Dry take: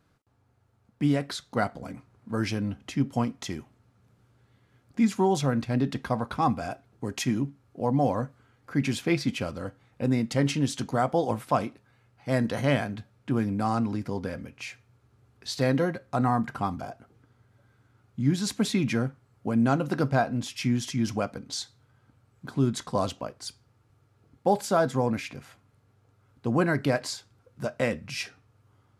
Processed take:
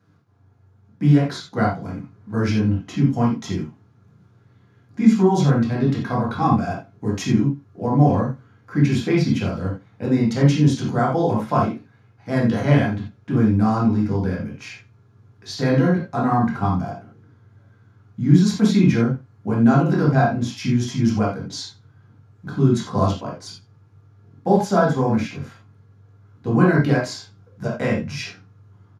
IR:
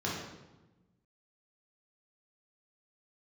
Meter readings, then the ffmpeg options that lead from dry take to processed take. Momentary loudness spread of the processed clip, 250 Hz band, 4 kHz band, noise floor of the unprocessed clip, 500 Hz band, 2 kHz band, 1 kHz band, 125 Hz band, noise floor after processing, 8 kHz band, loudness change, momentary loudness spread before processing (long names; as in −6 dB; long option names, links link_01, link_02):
15 LU, +9.0 dB, +2.5 dB, −66 dBFS, +5.5 dB, +5.0 dB, +5.5 dB, +10.5 dB, −55 dBFS, +1.0 dB, +8.0 dB, 14 LU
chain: -filter_complex "[0:a]asplit=2[link_01][link_02];[link_02]adelay=87.46,volume=-23dB,highshelf=frequency=4000:gain=-1.97[link_03];[link_01][link_03]amix=inputs=2:normalize=0[link_04];[1:a]atrim=start_sample=2205,atrim=end_sample=4410[link_05];[link_04][link_05]afir=irnorm=-1:irlink=0,volume=-1dB"